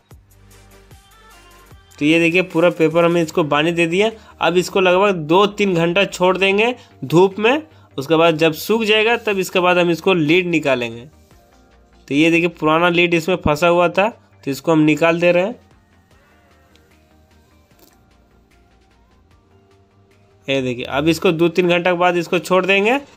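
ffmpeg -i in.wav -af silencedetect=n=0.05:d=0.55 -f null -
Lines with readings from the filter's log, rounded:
silence_start: 0.00
silence_end: 1.99 | silence_duration: 1.99
silence_start: 11.00
silence_end: 12.08 | silence_duration: 1.08
silence_start: 15.52
silence_end: 20.48 | silence_duration: 4.96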